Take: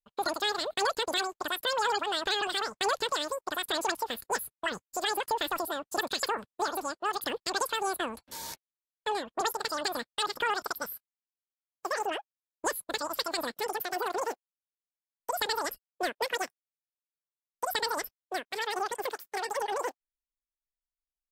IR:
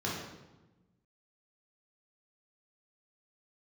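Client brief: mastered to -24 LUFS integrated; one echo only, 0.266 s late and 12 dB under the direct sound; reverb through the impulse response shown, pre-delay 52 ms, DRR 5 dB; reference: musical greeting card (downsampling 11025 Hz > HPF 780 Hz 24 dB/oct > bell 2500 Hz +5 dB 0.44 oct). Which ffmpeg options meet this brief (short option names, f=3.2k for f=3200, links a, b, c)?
-filter_complex "[0:a]aecho=1:1:266:0.251,asplit=2[a][b];[1:a]atrim=start_sample=2205,adelay=52[c];[b][c]afir=irnorm=-1:irlink=0,volume=-11.5dB[d];[a][d]amix=inputs=2:normalize=0,aresample=11025,aresample=44100,highpass=f=780:w=0.5412,highpass=f=780:w=1.3066,equalizer=f=2.5k:t=o:w=0.44:g=5,volume=8dB"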